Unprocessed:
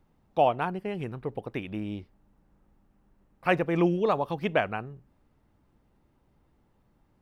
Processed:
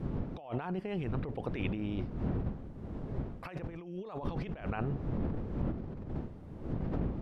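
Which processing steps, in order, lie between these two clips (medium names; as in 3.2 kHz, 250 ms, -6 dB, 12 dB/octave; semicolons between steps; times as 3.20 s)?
wind noise 220 Hz -36 dBFS; compressor with a negative ratio -37 dBFS, ratio -1; low-pass that closes with the level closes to 960 Hz, closed at -22.5 dBFS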